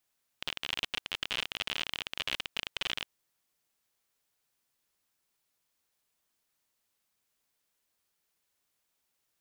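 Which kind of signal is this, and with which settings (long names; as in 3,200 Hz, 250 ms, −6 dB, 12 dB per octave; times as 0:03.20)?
Geiger counter clicks 51 per second −16.5 dBFS 2.62 s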